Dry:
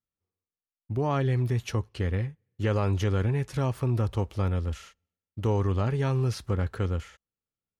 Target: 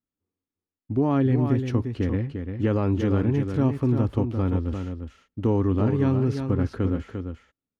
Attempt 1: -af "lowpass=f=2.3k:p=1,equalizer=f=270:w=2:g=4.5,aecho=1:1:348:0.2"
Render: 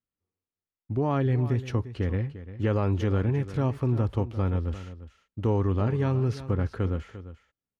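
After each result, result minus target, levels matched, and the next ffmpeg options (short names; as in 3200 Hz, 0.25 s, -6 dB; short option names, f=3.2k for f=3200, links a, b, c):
echo-to-direct -7 dB; 250 Hz band -3.5 dB
-af "lowpass=f=2.3k:p=1,equalizer=f=270:w=2:g=4.5,aecho=1:1:348:0.447"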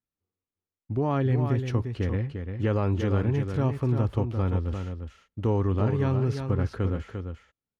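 250 Hz band -3.5 dB
-af "lowpass=f=2.3k:p=1,equalizer=f=270:w=2:g=13,aecho=1:1:348:0.447"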